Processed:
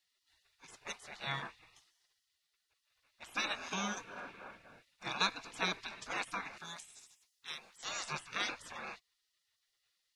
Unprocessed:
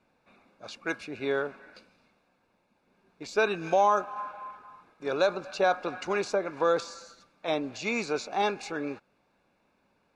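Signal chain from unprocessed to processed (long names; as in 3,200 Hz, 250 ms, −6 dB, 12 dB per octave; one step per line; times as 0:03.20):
gate on every frequency bin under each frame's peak −20 dB weak
0:06.58–0:07.83: first-order pre-emphasis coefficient 0.8
level +4 dB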